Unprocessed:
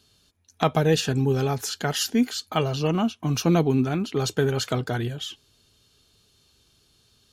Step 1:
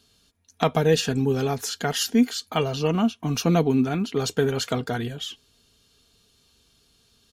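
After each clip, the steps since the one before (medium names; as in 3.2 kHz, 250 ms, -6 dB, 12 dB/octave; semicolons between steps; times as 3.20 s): comb 4.3 ms, depth 35%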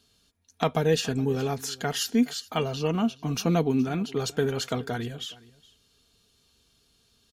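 delay 419 ms -22 dB; trim -3.5 dB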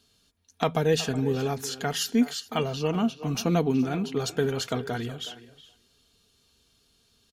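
de-hum 55.15 Hz, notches 3; speakerphone echo 370 ms, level -14 dB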